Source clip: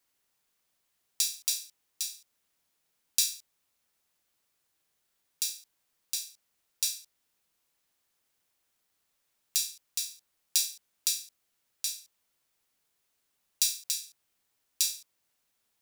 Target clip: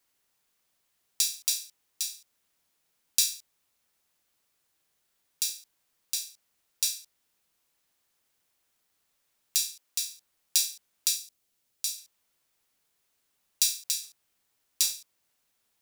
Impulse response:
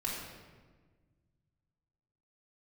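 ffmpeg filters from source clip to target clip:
-filter_complex "[0:a]asettb=1/sr,asplit=3[link_01][link_02][link_03];[link_01]atrim=end=9.654[link_04];[link_02]atrim=start=9.65:end=10.05,asetpts=PTS-STARTPTS,afade=type=in:duration=0.004:curve=qsin,afade=type=out:start_time=0.396:duration=0.004:curve=qsin,highpass=200[link_05];[link_03]atrim=start=10.046[link_06];[link_04][link_05]acrossfade=duration=0.004:curve1=hsin:curve2=qsin[link_07];[link_07][link_06]acrossfade=duration=0.004:curve1=qsin:curve2=hsin,asettb=1/sr,asplit=3[link_08][link_09][link_10];[link_08]atrim=end=11.164[link_11];[link_09]atrim=start=11.16:end=11.98,asetpts=PTS-STARTPTS,afade=type=in:duration=0.004:curve=qsin,afade=type=out:start_time=0.816:duration=0.004:curve=qsin,equalizer=frequency=1400:width_type=o:width=2:gain=-5.5[link_12];[link_10]atrim=start=11.976[link_13];[link_11][link_12]acrossfade=duration=0.004:curve1=hsin:curve2=qsin[link_14];[link_14][link_13]acrossfade=duration=0.004:curve1=qsin:curve2=hsin,asettb=1/sr,asplit=3[link_15][link_16][link_17];[link_15]atrim=end=14.034[link_18];[link_16]atrim=start=14.03:end=14.93,asetpts=PTS-STARTPTS,afade=type=in:duration=0.004:curve=qsin,afade=type=out:start_time=0.896:duration=0.004:curve=qsin,acrusher=bits=4:mode=log:mix=0:aa=0.000001[link_19];[link_17]atrim=start=14.926[link_20];[link_18][link_19]acrossfade=duration=0.004:curve1=hsin:curve2=qsin[link_21];[link_21][link_20]acrossfade=duration=0.004:curve1=qsin:curve2=hsin,volume=2dB"

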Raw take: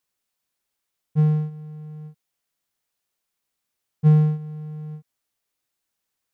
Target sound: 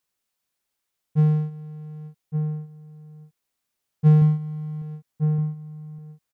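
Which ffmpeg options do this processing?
ffmpeg -i in.wav -filter_complex "[0:a]asettb=1/sr,asplit=3[link_01][link_02][link_03];[link_01]atrim=end=4.214[link_04];[link_02]atrim=start=4.21:end=4.82,asetpts=PTS-STARTPTS,afade=type=in:duration=0.004:curve=qsin,afade=type=out:start_time=0.606:duration=0.004:curve=qsin,aecho=1:1:7.5:0.52,atrim=end_sample=26901[link_05];[link_03]atrim=start=4.816[link_06];[link_04][link_05]acrossfade=duration=0.004:curve1=hsin:curve2=qsin[link_07];[link_07][link_06]acrossfade=duration=0.004:curve1=qsin:curve2=hsin,asplit=2[link_08][link_09];[link_09]adelay=1166,volume=-7dB,highshelf=frequency=4000:gain=-26.2[link_10];[link_08][link_10]amix=inputs=2:normalize=0" out.wav

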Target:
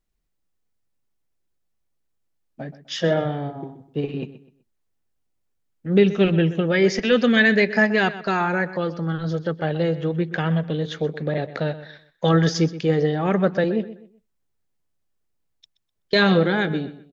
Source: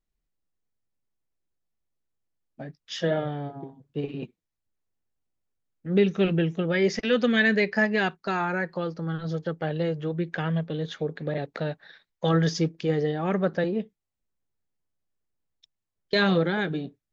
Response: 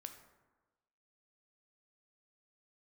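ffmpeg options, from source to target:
-filter_complex "[0:a]asplit=2[link_01][link_02];[link_02]adelay=126,lowpass=frequency=4400:poles=1,volume=-14.5dB,asplit=2[link_03][link_04];[link_04]adelay=126,lowpass=frequency=4400:poles=1,volume=0.31,asplit=2[link_05][link_06];[link_06]adelay=126,lowpass=frequency=4400:poles=1,volume=0.31[link_07];[link_01][link_03][link_05][link_07]amix=inputs=4:normalize=0,volume=5dB"

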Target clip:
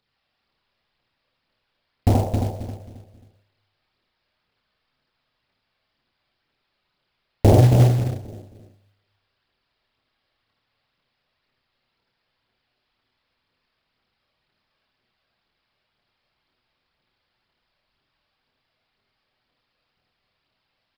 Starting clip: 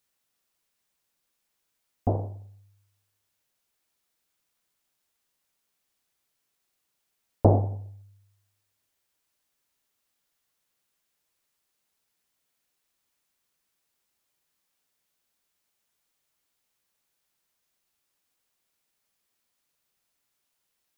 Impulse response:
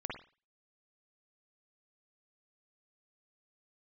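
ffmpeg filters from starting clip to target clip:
-filter_complex "[0:a]alimiter=limit=-12dB:level=0:latency=1:release=272,aphaser=in_gain=1:out_gain=1:delay=1.9:decay=0.55:speed=2:type=triangular,asplit=2[link_01][link_02];[link_02]adelay=268,lowpass=frequency=840:poles=1,volume=-5dB,asplit=2[link_03][link_04];[link_04]adelay=268,lowpass=frequency=840:poles=1,volume=0.35,asplit=2[link_05][link_06];[link_06]adelay=268,lowpass=frequency=840:poles=1,volume=0.35,asplit=2[link_07][link_08];[link_08]adelay=268,lowpass=frequency=840:poles=1,volume=0.35[link_09];[link_01][link_03][link_05][link_07][link_09]amix=inputs=5:normalize=0,asplit=3[link_10][link_11][link_12];[link_10]afade=type=out:start_time=7.53:duration=0.02[link_13];[link_11]afreqshift=22,afade=type=in:start_time=7.53:duration=0.02,afade=type=out:start_time=8.02:duration=0.02[link_14];[link_12]afade=type=in:start_time=8.02:duration=0.02[link_15];[link_13][link_14][link_15]amix=inputs=3:normalize=0,asplit=2[link_16][link_17];[1:a]atrim=start_sample=2205,adelay=27[link_18];[link_17][link_18]afir=irnorm=-1:irlink=0,volume=0dB[link_19];[link_16][link_19]amix=inputs=2:normalize=0,aresample=11025,aresample=44100,acrusher=bits=5:mode=log:mix=0:aa=0.000001,volume=4.5dB"

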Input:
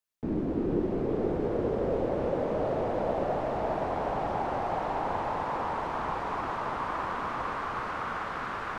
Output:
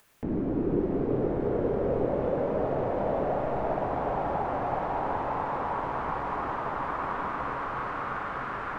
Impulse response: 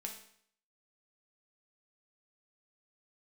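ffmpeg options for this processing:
-filter_complex "[0:a]acompressor=mode=upward:threshold=-35dB:ratio=2.5,asplit=2[link_01][link_02];[1:a]atrim=start_sample=2205,asetrate=27783,aresample=44100,lowpass=2800[link_03];[link_02][link_03]afir=irnorm=-1:irlink=0,volume=3.5dB[link_04];[link_01][link_04]amix=inputs=2:normalize=0,volume=-6.5dB"

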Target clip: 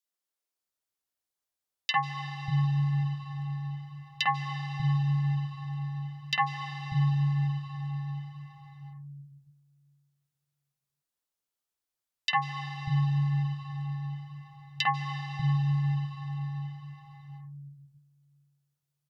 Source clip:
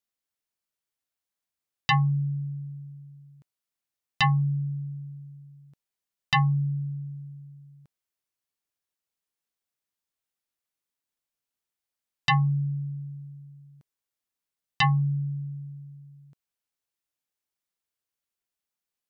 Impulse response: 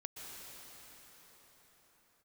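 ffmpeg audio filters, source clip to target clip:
-filter_complex "[0:a]acrossover=split=210|2200[link_01][link_02][link_03];[link_02]adelay=50[link_04];[link_01]adelay=590[link_05];[link_05][link_04][link_03]amix=inputs=3:normalize=0,asplit=2[link_06][link_07];[1:a]atrim=start_sample=2205,asetrate=37044,aresample=44100[link_08];[link_07][link_08]afir=irnorm=-1:irlink=0,volume=-0.5dB[link_09];[link_06][link_09]amix=inputs=2:normalize=0,volume=-4.5dB"

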